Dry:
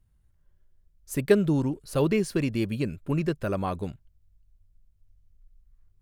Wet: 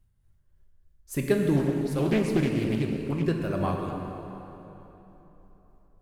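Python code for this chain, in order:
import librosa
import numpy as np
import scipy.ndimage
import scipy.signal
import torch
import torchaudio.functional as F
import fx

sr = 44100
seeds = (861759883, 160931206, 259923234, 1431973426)

y = x * (1.0 - 0.51 / 2.0 + 0.51 / 2.0 * np.cos(2.0 * np.pi * 3.3 * (np.arange(len(x)) / sr)))
y = fx.rev_plate(y, sr, seeds[0], rt60_s=3.6, hf_ratio=0.7, predelay_ms=0, drr_db=1.0)
y = fx.doppler_dist(y, sr, depth_ms=0.4, at=(1.56, 3.24))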